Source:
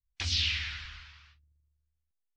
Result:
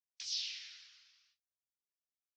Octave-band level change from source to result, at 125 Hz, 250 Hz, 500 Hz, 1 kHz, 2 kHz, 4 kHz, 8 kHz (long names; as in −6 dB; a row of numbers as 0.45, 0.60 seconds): below −40 dB, below −35 dB, can't be measured, below −20 dB, −17.5 dB, −9.5 dB, −3.5 dB